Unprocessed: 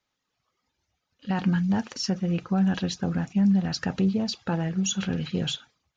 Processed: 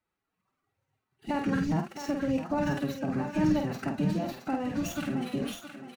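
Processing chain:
running median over 9 samples
low-shelf EQ 300 Hz +2.5 dB
notch filter 3,300 Hz, Q 7.2
in parallel at 0 dB: downward compressor, threshold −28 dBFS, peak gain reduction 11.5 dB
on the sum: phase-vocoder pitch shift with formants kept +7.5 semitones
double-tracking delay 49 ms −5.5 dB
on a send: feedback echo with a high-pass in the loop 668 ms, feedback 34%, high-pass 430 Hz, level −8 dB
on the sum: level −9 dB

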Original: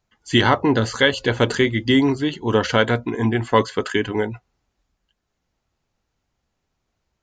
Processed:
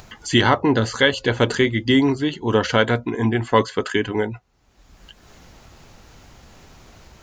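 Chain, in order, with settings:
upward compression, threshold −23 dBFS

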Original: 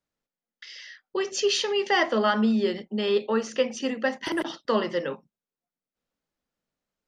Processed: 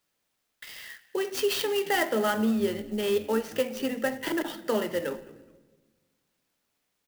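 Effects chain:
high-pass filter 160 Hz 24 dB per octave
high-shelf EQ 7,100 Hz −10.5 dB
notch filter 1,100 Hz, Q 5.2
in parallel at +1.5 dB: downward compressor, threshold −31 dBFS, peak gain reduction 12.5 dB
on the sum: bit-depth reduction 12 bits, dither triangular
on a send: echo with shifted repeats 211 ms, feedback 36%, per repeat −120 Hz, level −23 dB
on the sum: rectangular room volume 900 cubic metres, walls mixed, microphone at 0.36 metres
converter with an unsteady clock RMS 0.029 ms
level −5 dB

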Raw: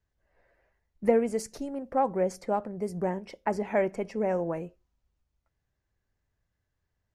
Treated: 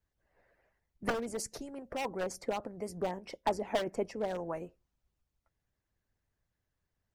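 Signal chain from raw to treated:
wave folding −20.5 dBFS
harmonic and percussive parts rebalanced harmonic −11 dB
dynamic equaliser 2,100 Hz, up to −5 dB, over −50 dBFS, Q 0.99
level +1.5 dB

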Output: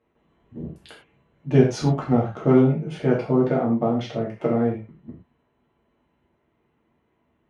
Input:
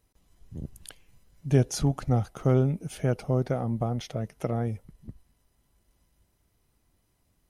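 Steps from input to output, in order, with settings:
adaptive Wiener filter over 9 samples
band-pass filter 140–3,400 Hz
reverb whose tail is shaped and stops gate 140 ms falling, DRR −5 dB
level +2.5 dB

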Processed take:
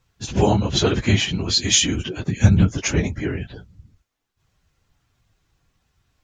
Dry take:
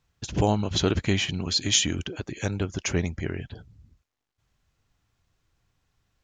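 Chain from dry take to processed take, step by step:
random phases in long frames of 50 ms
0:02.28–0:02.68: low shelf with overshoot 250 Hz +9 dB, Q 1.5
level +5.5 dB

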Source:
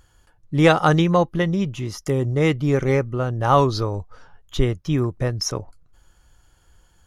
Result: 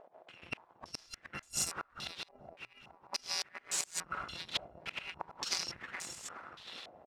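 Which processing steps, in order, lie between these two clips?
samples in bit-reversed order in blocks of 256 samples
gate on every frequency bin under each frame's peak −25 dB weak
downward compressor 4 to 1, threshold −45 dBFS, peak gain reduction 19 dB
gate with flip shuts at −33 dBFS, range −34 dB
0:02.31–0:02.85: stiff-string resonator 120 Hz, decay 0.4 s, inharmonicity 0.03
repeating echo 419 ms, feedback 52%, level −6 dB
low-pass on a step sequencer 3.5 Hz 660–7,400 Hz
level +12.5 dB

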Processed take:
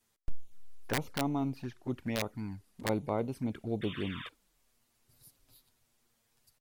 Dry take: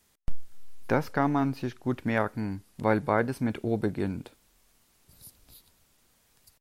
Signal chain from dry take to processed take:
0:03.81–0:04.29: sound drawn into the spectrogram noise 960–3,700 Hz −37 dBFS
flanger swept by the level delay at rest 9 ms, full sweep at −23.5 dBFS
0:00.93–0:02.89: wrap-around overflow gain 17.5 dB
level −5.5 dB

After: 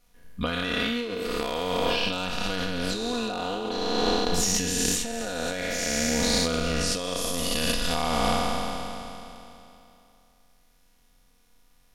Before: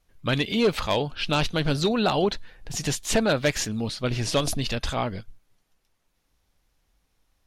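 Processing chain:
peak hold with a decay on every bin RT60 1.83 s
high-shelf EQ 7,600 Hz +4 dB
compressor whose output falls as the input rises −26 dBFS, ratio −1
time stretch by overlap-add 1.6×, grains 22 ms

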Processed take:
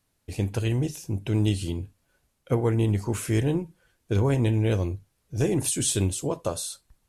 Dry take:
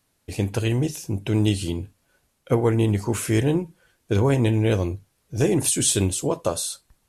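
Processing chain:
low-shelf EQ 110 Hz +6.5 dB
level −5 dB

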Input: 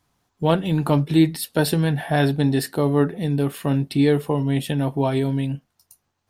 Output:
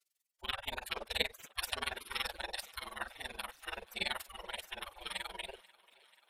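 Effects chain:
granular cloud 39 ms, grains 21 per second, spray 11 ms, pitch spread up and down by 0 semitones
gate on every frequency bin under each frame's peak −25 dB weak
on a send: feedback echo with a high-pass in the loop 487 ms, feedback 70%, high-pass 270 Hz, level −22.5 dB
on the sum: level +4.5 dB

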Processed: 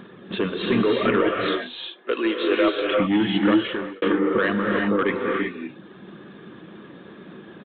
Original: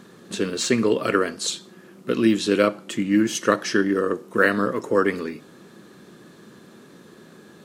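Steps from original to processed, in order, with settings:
0:01.35–0:03.00: high-pass filter 380 Hz 24 dB per octave
reverb reduction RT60 1 s
brickwall limiter −12.5 dBFS, peak gain reduction 8 dB
0:04.57–0:04.99: downward compressor 2.5 to 1, threshold −27 dBFS, peak gain reduction 6 dB
soft clipping −19.5 dBFS, distortion −13 dB
reverb whose tail is shaped and stops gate 400 ms rising, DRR 0 dB
downsampling to 8,000 Hz
0:03.52–0:04.02: fade out
level +4.5 dB

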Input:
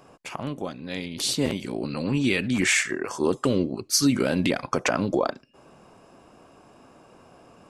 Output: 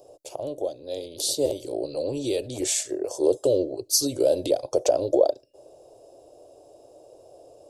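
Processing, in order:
drawn EQ curve 120 Hz 0 dB, 210 Hz −21 dB, 310 Hz +4 dB, 590 Hz +15 dB, 1,200 Hz −16 dB, 2,100 Hz −18 dB, 3,700 Hz +3 dB, 12,000 Hz +10 dB
level −5.5 dB

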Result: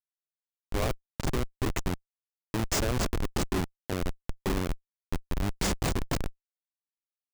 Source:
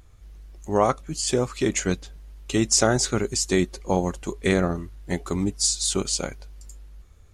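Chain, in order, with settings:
slap from a distant wall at 39 metres, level −14 dB
comparator with hysteresis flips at −18 dBFS
level −1 dB

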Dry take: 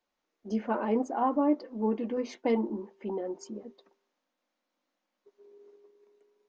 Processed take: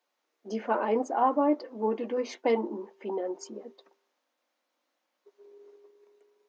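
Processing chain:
high-pass filter 350 Hz 12 dB per octave
level +4 dB

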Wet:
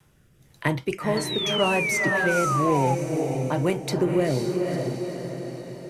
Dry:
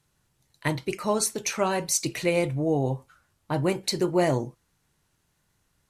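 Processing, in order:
rotating-speaker cabinet horn 1 Hz
on a send: feedback delay with all-pass diffusion 491 ms, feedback 41%, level −5 dB
on the sum: sound drawn into the spectrogram fall, 0:01.17–0:02.95, 810–4,500 Hz −28 dBFS
parametric band 7,300 Hz −7 dB 1.9 octaves
notch filter 4,200 Hz, Q 7.6
in parallel at −6 dB: soft clipping −20 dBFS, distortion −15 dB
on the sum: pitch vibrato 0.48 Hz 12 cents
multiband upward and downward compressor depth 40%

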